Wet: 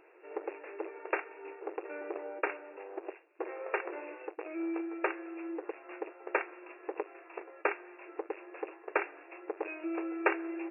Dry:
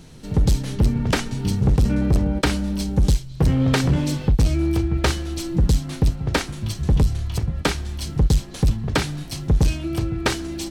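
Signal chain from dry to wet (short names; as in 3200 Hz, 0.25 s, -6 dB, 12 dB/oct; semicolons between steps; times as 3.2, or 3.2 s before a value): 2.77–3.28 minimum comb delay 1.1 ms; vocal rider 2 s; brick-wall FIR band-pass 320–2800 Hz; gain -8 dB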